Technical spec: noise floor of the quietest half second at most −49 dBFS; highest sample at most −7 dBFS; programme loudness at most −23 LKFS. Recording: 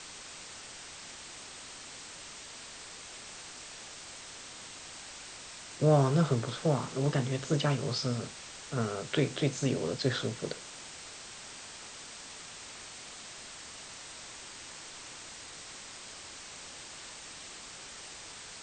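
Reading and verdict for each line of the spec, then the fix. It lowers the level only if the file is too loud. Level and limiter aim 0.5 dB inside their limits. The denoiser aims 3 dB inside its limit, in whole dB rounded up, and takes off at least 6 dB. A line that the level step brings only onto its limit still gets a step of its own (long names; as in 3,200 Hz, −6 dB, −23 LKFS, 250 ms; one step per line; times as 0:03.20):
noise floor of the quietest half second −47 dBFS: out of spec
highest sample −12.0 dBFS: in spec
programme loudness −36.0 LKFS: in spec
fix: broadband denoise 6 dB, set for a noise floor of −47 dBFS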